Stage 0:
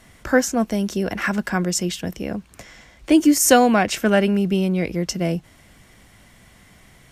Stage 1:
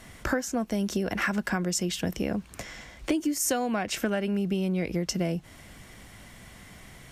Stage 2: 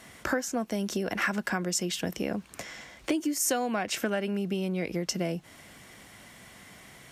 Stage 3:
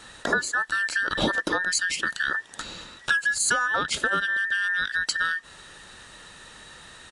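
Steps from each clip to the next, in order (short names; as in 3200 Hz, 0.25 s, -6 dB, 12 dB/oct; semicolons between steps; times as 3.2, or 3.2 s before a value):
compressor 12:1, threshold -26 dBFS, peak gain reduction 18 dB; gain +2 dB
HPF 220 Hz 6 dB/oct
band inversion scrambler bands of 2000 Hz; downsampling 22050 Hz; gain +4.5 dB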